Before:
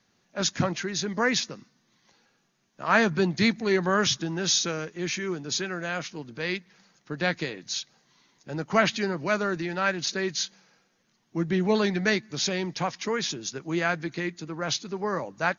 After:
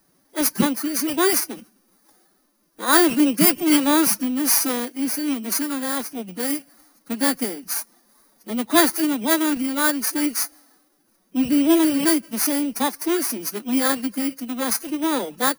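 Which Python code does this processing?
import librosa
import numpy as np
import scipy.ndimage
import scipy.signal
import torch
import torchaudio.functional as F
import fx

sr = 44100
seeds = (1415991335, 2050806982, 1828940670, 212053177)

y = fx.bit_reversed(x, sr, seeds[0], block=16)
y = fx.pitch_keep_formants(y, sr, semitones=7.5)
y = y * 10.0 ** (7.5 / 20.0)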